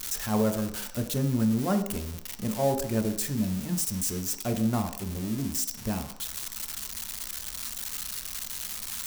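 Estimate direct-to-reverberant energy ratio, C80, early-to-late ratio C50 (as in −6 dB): 5.5 dB, 12.5 dB, 10.0 dB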